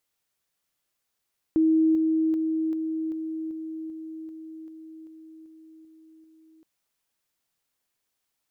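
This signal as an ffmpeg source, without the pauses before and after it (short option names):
-f lavfi -i "aevalsrc='pow(10,(-17-3*floor(t/0.39))/20)*sin(2*PI*319*t)':d=5.07:s=44100"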